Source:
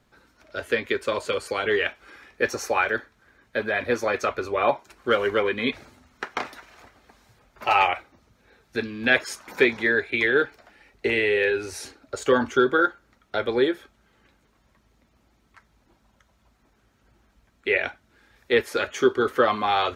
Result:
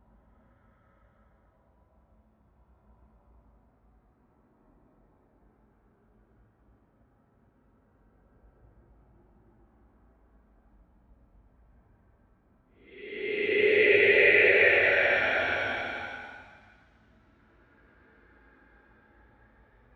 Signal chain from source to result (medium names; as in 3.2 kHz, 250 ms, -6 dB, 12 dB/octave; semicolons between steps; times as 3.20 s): level-controlled noise filter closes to 940 Hz, open at -21.5 dBFS; Paulstretch 8.8×, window 0.25 s, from 16.11 s; trim +1.5 dB